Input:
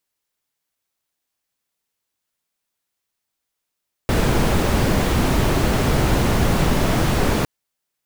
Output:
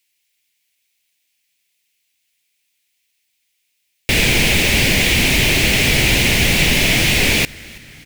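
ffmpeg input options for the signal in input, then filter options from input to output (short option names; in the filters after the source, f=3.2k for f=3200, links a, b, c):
-f lavfi -i "anoisesrc=c=brown:a=0.661:d=3.36:r=44100:seed=1"
-filter_complex "[0:a]highshelf=f=1.7k:t=q:w=3:g=10.5,asplit=5[a][b][c][d][e];[b]adelay=327,afreqshift=-81,volume=-23dB[f];[c]adelay=654,afreqshift=-162,volume=-27.7dB[g];[d]adelay=981,afreqshift=-243,volume=-32.5dB[h];[e]adelay=1308,afreqshift=-324,volume=-37.2dB[i];[a][f][g][h][i]amix=inputs=5:normalize=0"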